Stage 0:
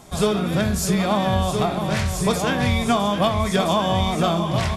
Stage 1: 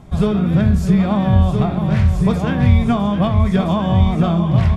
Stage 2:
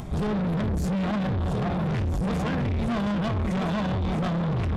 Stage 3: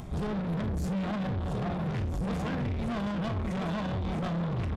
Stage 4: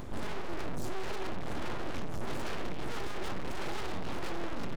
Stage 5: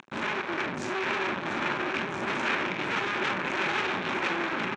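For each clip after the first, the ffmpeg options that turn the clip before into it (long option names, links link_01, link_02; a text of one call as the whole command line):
ffmpeg -i in.wav -af "bass=frequency=250:gain=13,treble=frequency=4000:gain=-13,volume=-2dB" out.wav
ffmpeg -i in.wav -af "alimiter=limit=-12.5dB:level=0:latency=1:release=22,acompressor=mode=upward:threshold=-33dB:ratio=2.5,asoftclip=type=tanh:threshold=-26.5dB,volume=2.5dB" out.wav
ffmpeg -i in.wav -filter_complex "[0:a]asplit=2[link_01][link_02];[link_02]adelay=41,volume=-13dB[link_03];[link_01][link_03]amix=inputs=2:normalize=0,volume=-5.5dB" out.wav
ffmpeg -i in.wav -af "aeval=exprs='abs(val(0))':channel_layout=same,volume=1dB" out.wav
ffmpeg -i in.wav -filter_complex "[0:a]acrusher=bits=4:mix=0:aa=0.5,highpass=290,equalizer=frequency=300:width_type=q:width=4:gain=-5,equalizer=frequency=470:width_type=q:width=4:gain=-9,equalizer=frequency=700:width_type=q:width=4:gain=-8,equalizer=frequency=1600:width_type=q:width=4:gain=5,equalizer=frequency=2400:width_type=q:width=4:gain=8,equalizer=frequency=4800:width_type=q:width=4:gain=-7,lowpass=frequency=6300:width=0.5412,lowpass=frequency=6300:width=1.3066,asplit=2[link_01][link_02];[link_02]adelay=932.9,volume=-6dB,highshelf=frequency=4000:gain=-21[link_03];[link_01][link_03]amix=inputs=2:normalize=0,volume=6.5dB" out.wav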